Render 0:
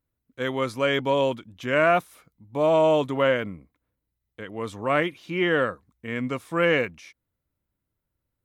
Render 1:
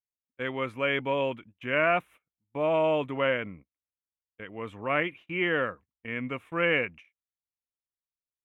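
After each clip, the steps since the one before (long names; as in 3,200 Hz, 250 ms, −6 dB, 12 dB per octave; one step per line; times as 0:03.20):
noise gate −42 dBFS, range −25 dB
high shelf with overshoot 3,500 Hz −10.5 dB, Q 3
level −6 dB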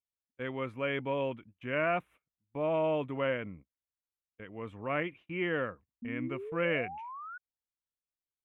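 sound drawn into the spectrogram rise, 0:06.02–0:07.38, 230–1,500 Hz −37 dBFS
spectral tilt −1.5 dB per octave
level −6 dB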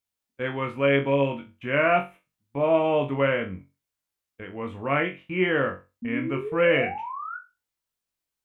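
flutter between parallel walls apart 3.7 metres, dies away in 0.26 s
level +7.5 dB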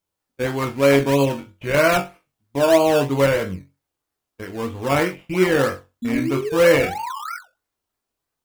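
in parallel at −3 dB: sample-and-hold swept by an LFO 17×, swing 60% 3.1 Hz
on the sum: flanger 0.57 Hz, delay 1.9 ms, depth 1.2 ms, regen −65%
level +6 dB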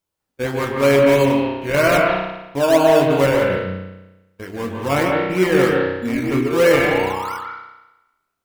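convolution reverb RT60 1.0 s, pre-delay 138 ms, DRR 0.5 dB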